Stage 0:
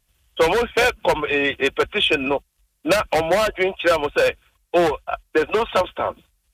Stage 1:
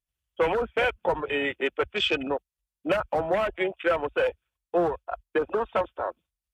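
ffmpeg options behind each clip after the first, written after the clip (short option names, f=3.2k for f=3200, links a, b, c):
-af "afwtdn=0.0631,volume=-6.5dB"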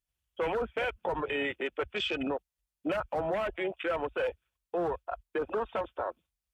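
-af "alimiter=limit=-23.5dB:level=0:latency=1:release=68"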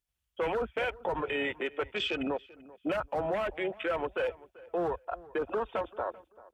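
-filter_complex "[0:a]asplit=2[a][b];[b]adelay=388,lowpass=f=2.4k:p=1,volume=-20dB,asplit=2[c][d];[d]adelay=388,lowpass=f=2.4k:p=1,volume=0.24[e];[a][c][e]amix=inputs=3:normalize=0"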